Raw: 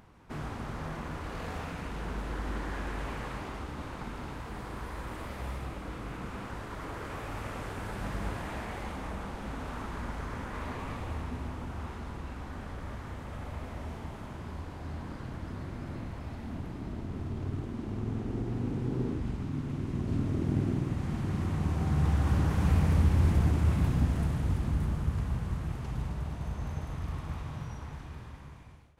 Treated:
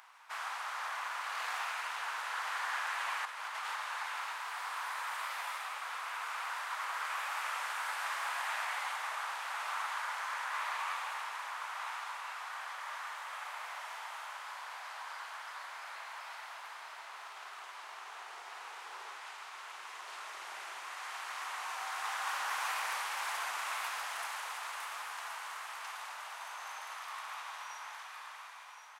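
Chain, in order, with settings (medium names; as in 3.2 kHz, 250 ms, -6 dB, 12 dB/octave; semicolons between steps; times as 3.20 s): inverse Chebyshev high-pass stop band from 270 Hz, stop band 60 dB; 3.25–3.76 s: compressor with a negative ratio -48 dBFS, ratio -0.5; on a send: feedback delay 1074 ms, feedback 43%, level -9 dB; on the sum: trim +6.5 dB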